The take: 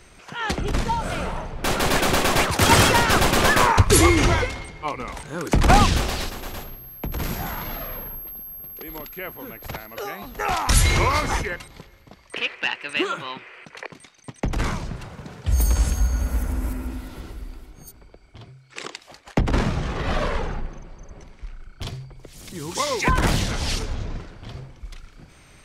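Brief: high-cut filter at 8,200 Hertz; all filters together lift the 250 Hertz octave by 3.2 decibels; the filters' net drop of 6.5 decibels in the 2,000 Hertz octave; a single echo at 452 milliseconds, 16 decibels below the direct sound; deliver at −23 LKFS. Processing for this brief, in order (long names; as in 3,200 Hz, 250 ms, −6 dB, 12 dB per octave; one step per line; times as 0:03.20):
low-pass filter 8,200 Hz
parametric band 250 Hz +4.5 dB
parametric band 2,000 Hz −8.5 dB
single-tap delay 452 ms −16 dB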